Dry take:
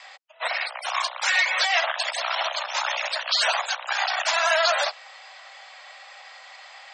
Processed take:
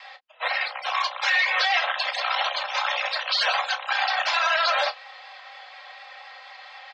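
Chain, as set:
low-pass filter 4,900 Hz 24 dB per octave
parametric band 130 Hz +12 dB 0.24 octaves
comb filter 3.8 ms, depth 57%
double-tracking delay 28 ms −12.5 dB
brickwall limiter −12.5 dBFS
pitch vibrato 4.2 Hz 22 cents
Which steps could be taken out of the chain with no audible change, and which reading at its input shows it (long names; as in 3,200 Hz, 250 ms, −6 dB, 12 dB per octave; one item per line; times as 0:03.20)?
parametric band 130 Hz: nothing at its input below 480 Hz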